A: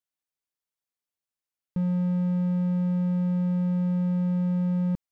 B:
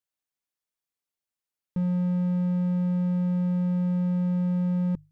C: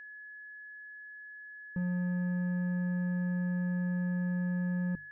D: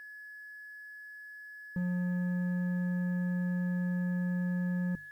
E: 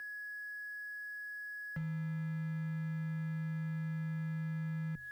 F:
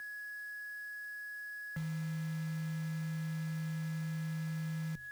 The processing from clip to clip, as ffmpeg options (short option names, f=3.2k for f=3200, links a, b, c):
-af "bandreject=f=50:t=h:w=6,bandreject=f=100:t=h:w=6,bandreject=f=150:t=h:w=6"
-af "crystalizer=i=3:c=0,adynamicsmooth=sensitivity=4:basefreq=890,aeval=exprs='val(0)+0.0126*sin(2*PI*1700*n/s)':c=same,volume=-7dB"
-af "acrusher=bits=10:mix=0:aa=0.000001"
-af "acompressor=threshold=-38dB:ratio=12,asoftclip=type=hard:threshold=-38.5dB,afreqshift=-20,volume=3.5dB"
-af "acrusher=bits=4:mode=log:mix=0:aa=0.000001"